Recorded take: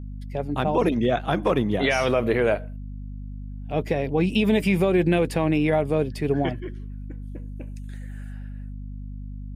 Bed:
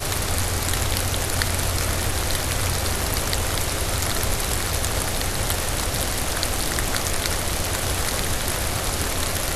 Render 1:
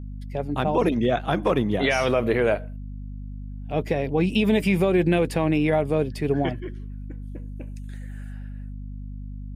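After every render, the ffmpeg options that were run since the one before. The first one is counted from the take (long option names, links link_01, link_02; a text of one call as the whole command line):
ffmpeg -i in.wav -af anull out.wav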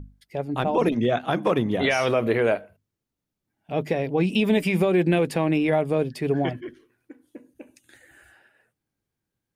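ffmpeg -i in.wav -af "bandreject=frequency=50:width_type=h:width=6,bandreject=frequency=100:width_type=h:width=6,bandreject=frequency=150:width_type=h:width=6,bandreject=frequency=200:width_type=h:width=6,bandreject=frequency=250:width_type=h:width=6" out.wav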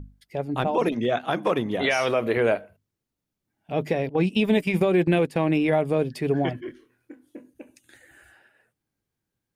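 ffmpeg -i in.wav -filter_complex "[0:a]asettb=1/sr,asplit=3[link_01][link_02][link_03];[link_01]atrim=end=0.674[link_04];[link_02]atrim=start=0.67:end=2.37,asetpts=PTS-STARTPTS,afade=type=in:duration=0.004:curve=qsin,afade=type=out:start_time=1.696:duration=0.004:curve=qsin,lowshelf=frequency=220:gain=-7.5[link_05];[link_03]atrim=start=2.366[link_06];[link_04][link_05]acrossfade=duration=0.004:curve1=hsin:curve2=qsin[link_07];[link_07][link_06]acrossfade=duration=0.004:curve1=qsin:curve2=hsin,asettb=1/sr,asplit=3[link_08][link_09][link_10];[link_08]atrim=end=4.094[link_11];[link_09]atrim=start=4.09:end=5.36,asetpts=PTS-STARTPTS,afade=type=in:duration=0.004:curve=qsin,afade=type=out:start_time=1.266:duration=0.004:curve=qsin,agate=range=-11dB:threshold=-24dB:ratio=16:release=100:detection=peak[link_12];[link_10]atrim=start=5.356[link_13];[link_11][link_12]acrossfade=duration=0.004:curve1=hsin:curve2=qsin[link_14];[link_14][link_13]acrossfade=duration=0.004:curve1=qsin:curve2=hsin,asettb=1/sr,asplit=3[link_15][link_16][link_17];[link_15]atrim=end=6.644[link_18];[link_16]atrim=start=6.64:end=7.5,asetpts=PTS-STARTPTS,afade=type=in:duration=0.004:curve=qsin,afade=type=out:start_time=0.856:duration=0.004:curve=qsin,asplit=2[link_19][link_20];[link_20]adelay=24,volume=-6.5dB[link_21];[link_19][link_21]amix=inputs=2:normalize=0,atrim=end_sample=37926[link_22];[link_17]atrim=start=7.496[link_23];[link_18][link_22]acrossfade=duration=0.004:curve1=hsin:curve2=qsin[link_24];[link_24][link_23]acrossfade=duration=0.004:curve1=qsin:curve2=hsin" out.wav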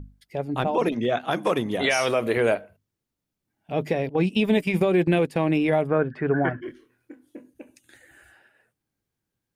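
ffmpeg -i in.wav -filter_complex "[0:a]asettb=1/sr,asplit=3[link_01][link_02][link_03];[link_01]atrim=end=1.314[link_04];[link_02]atrim=start=1.31:end=2.55,asetpts=PTS-STARTPTS,afade=type=in:duration=0.004:curve=qsin,afade=type=out:start_time=1.236:duration=0.004:curve=qsin,equalizer=frequency=9200:width_type=o:width=1.4:gain=9[link_05];[link_03]atrim=start=2.546[link_06];[link_04][link_05]acrossfade=duration=0.004:curve1=hsin:curve2=qsin[link_07];[link_07][link_06]acrossfade=duration=0.004:curve1=qsin:curve2=hsin,asplit=3[link_08][link_09][link_10];[link_08]afade=type=out:start_time=5.86:duration=0.02[link_11];[link_09]lowpass=frequency=1500:width_type=q:width=5.6,afade=type=in:start_time=5.86:duration=0.02,afade=type=out:start_time=6.6:duration=0.02[link_12];[link_10]afade=type=in:start_time=6.6:duration=0.02[link_13];[link_11][link_12][link_13]amix=inputs=3:normalize=0" out.wav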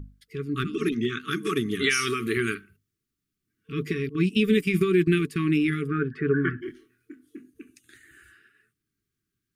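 ffmpeg -i in.wav -af "afftfilt=real='re*(1-between(b*sr/4096,450,1100))':imag='im*(1-between(b*sr/4096,450,1100))':win_size=4096:overlap=0.75,adynamicequalizer=threshold=0.00708:dfrequency=5900:dqfactor=0.7:tfrequency=5900:tqfactor=0.7:attack=5:release=100:ratio=0.375:range=2:mode=boostabove:tftype=highshelf" out.wav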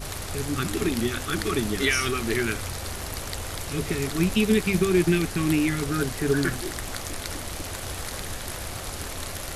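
ffmpeg -i in.wav -i bed.wav -filter_complex "[1:a]volume=-9.5dB[link_01];[0:a][link_01]amix=inputs=2:normalize=0" out.wav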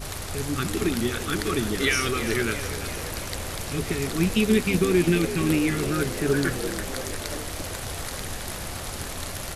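ffmpeg -i in.wav -filter_complex "[0:a]asplit=9[link_01][link_02][link_03][link_04][link_05][link_06][link_07][link_08][link_09];[link_02]adelay=338,afreqshift=55,volume=-12dB[link_10];[link_03]adelay=676,afreqshift=110,volume=-15.9dB[link_11];[link_04]adelay=1014,afreqshift=165,volume=-19.8dB[link_12];[link_05]adelay=1352,afreqshift=220,volume=-23.6dB[link_13];[link_06]adelay=1690,afreqshift=275,volume=-27.5dB[link_14];[link_07]adelay=2028,afreqshift=330,volume=-31.4dB[link_15];[link_08]adelay=2366,afreqshift=385,volume=-35.3dB[link_16];[link_09]adelay=2704,afreqshift=440,volume=-39.1dB[link_17];[link_01][link_10][link_11][link_12][link_13][link_14][link_15][link_16][link_17]amix=inputs=9:normalize=0" out.wav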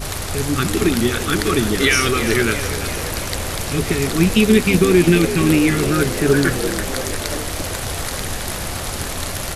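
ffmpeg -i in.wav -af "volume=8dB,alimiter=limit=-3dB:level=0:latency=1" out.wav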